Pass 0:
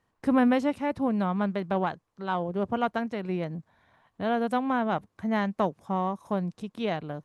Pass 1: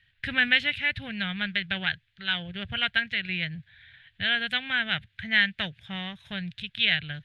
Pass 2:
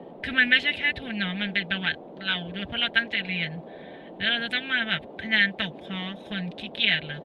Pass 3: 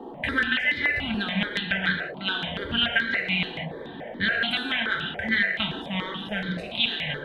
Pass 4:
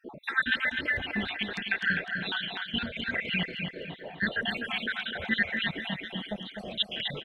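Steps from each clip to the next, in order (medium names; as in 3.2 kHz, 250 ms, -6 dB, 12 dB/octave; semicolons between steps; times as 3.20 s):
FFT filter 120 Hz 0 dB, 260 Hz -24 dB, 440 Hz -25 dB, 710 Hz -22 dB, 1.1 kHz -27 dB, 1.6 kHz +5 dB, 3.5 kHz +12 dB, 5.7 kHz -13 dB, 8.5 kHz -15 dB; trim +8.5 dB
comb 4.5 ms, depth 55%; band noise 160–730 Hz -43 dBFS
compression 6:1, threshold -25 dBFS, peak gain reduction 11 dB; on a send at -1 dB: reverberation, pre-delay 3 ms; on the sum: stepped phaser 7 Hz 580–2700 Hz; trim +6 dB
random holes in the spectrogram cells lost 68%; on a send: feedback delay 253 ms, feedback 38%, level -6 dB; on the sum: trim -1.5 dB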